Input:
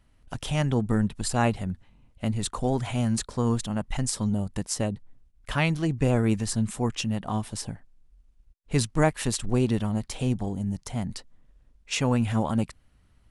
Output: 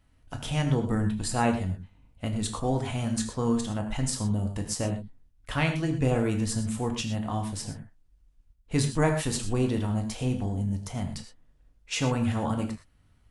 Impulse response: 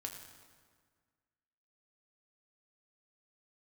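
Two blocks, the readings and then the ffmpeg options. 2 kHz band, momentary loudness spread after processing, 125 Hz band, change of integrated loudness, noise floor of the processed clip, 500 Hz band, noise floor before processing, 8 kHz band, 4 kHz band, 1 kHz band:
-1.5 dB, 10 LU, -1.0 dB, -1.5 dB, -62 dBFS, -1.5 dB, -61 dBFS, -1.5 dB, -1.5 dB, -1.0 dB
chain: -filter_complex "[1:a]atrim=start_sample=2205,afade=t=out:st=0.18:d=0.01,atrim=end_sample=8379[a];[0:a][a]afir=irnorm=-1:irlink=0,volume=1.5dB"

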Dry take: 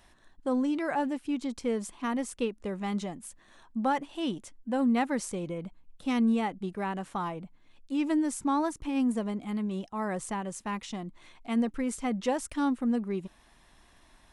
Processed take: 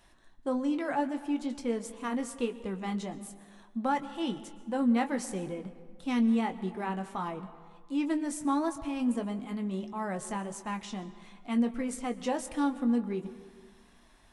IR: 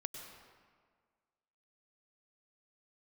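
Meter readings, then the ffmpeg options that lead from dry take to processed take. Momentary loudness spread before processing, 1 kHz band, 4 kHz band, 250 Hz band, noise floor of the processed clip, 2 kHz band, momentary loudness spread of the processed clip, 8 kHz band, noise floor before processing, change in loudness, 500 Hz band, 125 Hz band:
12 LU, -1.5 dB, -1.5 dB, -1.0 dB, -59 dBFS, -1.5 dB, 13 LU, -2.0 dB, -60 dBFS, -1.0 dB, -1.5 dB, -1.5 dB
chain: -filter_complex "[0:a]flanger=delay=5.8:depth=3.4:regen=-59:speed=1.5:shape=sinusoidal,asplit=2[a][b];[1:a]atrim=start_sample=2205,adelay=21[c];[b][c]afir=irnorm=-1:irlink=0,volume=-7dB[d];[a][d]amix=inputs=2:normalize=0,volume=2dB"

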